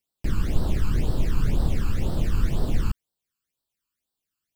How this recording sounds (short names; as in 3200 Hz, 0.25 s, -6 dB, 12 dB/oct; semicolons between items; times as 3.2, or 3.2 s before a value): phasing stages 12, 2 Hz, lowest notch 610–2300 Hz